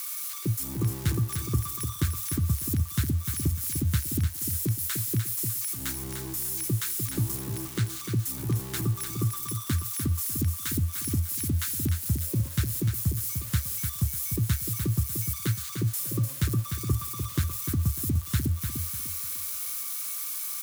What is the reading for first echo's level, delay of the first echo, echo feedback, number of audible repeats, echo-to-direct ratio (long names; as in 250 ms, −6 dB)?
−7.0 dB, 299 ms, 30%, 3, −6.5 dB